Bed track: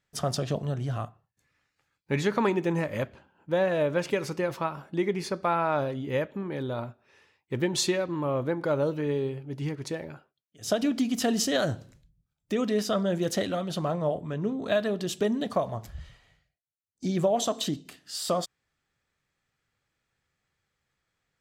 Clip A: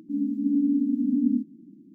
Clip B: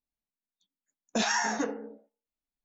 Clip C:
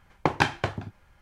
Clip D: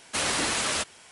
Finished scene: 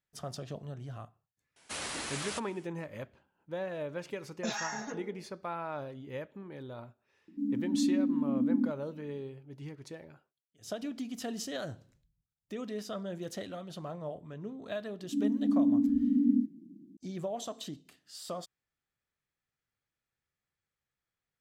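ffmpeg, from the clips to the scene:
ffmpeg -i bed.wav -i cue0.wav -i cue1.wav -i cue2.wav -i cue3.wav -filter_complex "[1:a]asplit=2[link_01][link_02];[0:a]volume=-12dB[link_03];[2:a]aecho=1:1:4.8:0.65[link_04];[4:a]atrim=end=1.11,asetpts=PTS-STARTPTS,volume=-11.5dB,afade=type=in:duration=0.004:curve=hsin,afade=type=out:start_time=1.106:duration=0.004:curve=hsin,adelay=1560[link_05];[link_04]atrim=end=2.64,asetpts=PTS-STARTPTS,volume=-10.5dB,afade=type=in:duration=0.004:curve=hsin,afade=type=out:start_time=2.636:duration=0.004:curve=hsin,adelay=3280[link_06];[link_01]atrim=end=1.94,asetpts=PTS-STARTPTS,volume=-5.5dB,afade=type=in:duration=0.004:curve=hsin,afade=type=out:start_time=1.936:duration=0.004:curve=hsin,adelay=7280[link_07];[link_02]atrim=end=1.94,asetpts=PTS-STARTPTS,volume=-3dB,afade=type=in:duration=0.004:curve=hsin,afade=type=out:start_time=1.936:duration=0.004:curve=hsin,adelay=15030[link_08];[link_03][link_05][link_06][link_07][link_08]amix=inputs=5:normalize=0" out.wav

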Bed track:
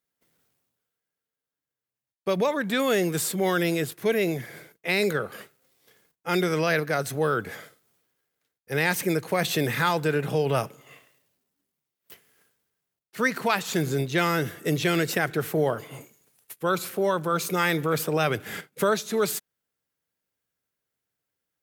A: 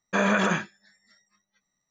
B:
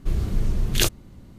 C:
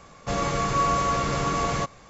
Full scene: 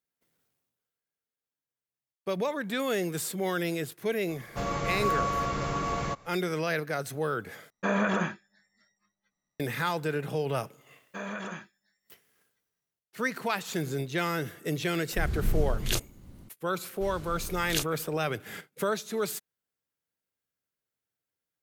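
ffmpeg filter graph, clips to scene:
ffmpeg -i bed.wav -i cue0.wav -i cue1.wav -i cue2.wav -filter_complex "[1:a]asplit=2[link_01][link_02];[2:a]asplit=2[link_03][link_04];[0:a]volume=-6dB[link_05];[3:a]highshelf=frequency=4900:gain=-6.5[link_06];[link_01]highshelf=frequency=2200:gain=-7.5[link_07];[link_03]dynaudnorm=framelen=170:gausssize=3:maxgain=4.5dB[link_08];[link_04]lowshelf=frequency=430:gain=-11[link_09];[link_05]asplit=2[link_10][link_11];[link_10]atrim=end=7.704[link_12];[link_07]atrim=end=1.9,asetpts=PTS-STARTPTS,volume=-3dB[link_13];[link_11]atrim=start=9.596[link_14];[link_06]atrim=end=2.09,asetpts=PTS-STARTPTS,volume=-5dB,afade=type=in:duration=0.004:curve=hsin,afade=type=out:start_time=2.086:duration=0.004:curve=hsin,adelay=189189S[link_15];[link_02]atrim=end=1.9,asetpts=PTS-STARTPTS,volume=-14.5dB,afade=type=in:duration=0.004:curve=hsin,afade=type=out:start_time=1.896:duration=0.004:curve=hsin,adelay=11010[link_16];[link_08]atrim=end=1.38,asetpts=PTS-STARTPTS,volume=-8dB,afade=type=in:duration=0.004:curve=hsin,afade=type=out:start_time=1.376:duration=0.004:curve=hsin,adelay=15110[link_17];[link_09]atrim=end=1.38,asetpts=PTS-STARTPTS,volume=-7.5dB,afade=type=in:duration=0.004:curve=hsin,afade=type=out:start_time=1.376:duration=0.004:curve=hsin,adelay=16950[link_18];[link_12][link_13]acrossfade=duration=0.004:curve1=hsin:curve2=hsin[link_19];[link_19][link_14]acrossfade=duration=0.004:curve1=hsin:curve2=hsin[link_20];[link_20][link_15][link_16][link_17][link_18]amix=inputs=5:normalize=0" out.wav

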